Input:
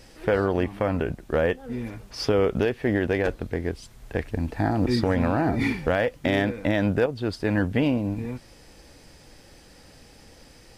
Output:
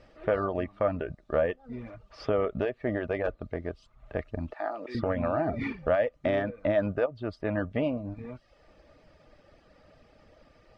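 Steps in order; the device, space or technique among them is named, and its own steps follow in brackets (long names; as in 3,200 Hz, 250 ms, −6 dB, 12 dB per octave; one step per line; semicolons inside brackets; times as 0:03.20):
0:04.53–0:04.95: high-pass filter 580 Hz 12 dB per octave
reverb reduction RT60 0.62 s
inside a cardboard box (low-pass filter 3,000 Hz 12 dB per octave; hollow resonant body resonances 620/1,200 Hz, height 14 dB, ringing for 50 ms)
level −7 dB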